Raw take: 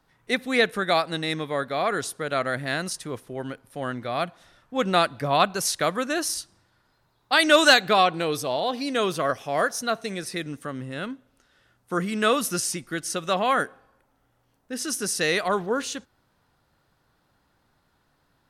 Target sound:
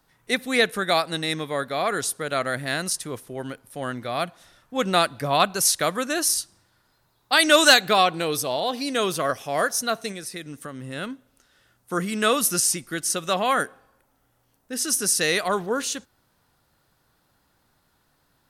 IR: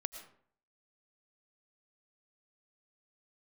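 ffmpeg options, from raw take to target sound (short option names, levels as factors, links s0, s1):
-filter_complex "[0:a]highshelf=f=6200:g=10.5,asplit=3[s0][s1][s2];[s0]afade=t=out:st=10.11:d=0.02[s3];[s1]acompressor=threshold=0.0224:ratio=3,afade=t=in:st=10.11:d=0.02,afade=t=out:st=10.83:d=0.02[s4];[s2]afade=t=in:st=10.83:d=0.02[s5];[s3][s4][s5]amix=inputs=3:normalize=0"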